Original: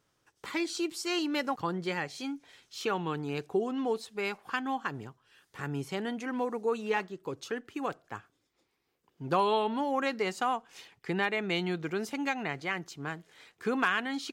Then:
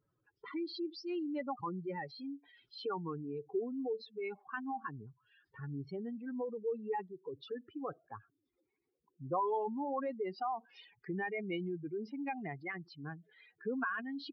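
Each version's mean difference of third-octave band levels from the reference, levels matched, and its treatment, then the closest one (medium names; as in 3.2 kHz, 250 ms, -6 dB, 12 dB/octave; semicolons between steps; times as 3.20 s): 13.0 dB: spectral contrast enhancement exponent 2.9; dynamic bell 1.7 kHz, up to -4 dB, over -47 dBFS, Q 3.8; resampled via 11.025 kHz; trim -6 dB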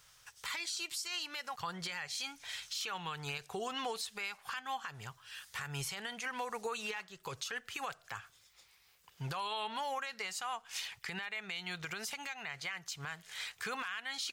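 9.0 dB: amplifier tone stack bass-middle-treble 10-0-10; compression 5:1, threshold -52 dBFS, peak gain reduction 20 dB; peak limiter -46 dBFS, peak gain reduction 10.5 dB; trim +17 dB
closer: second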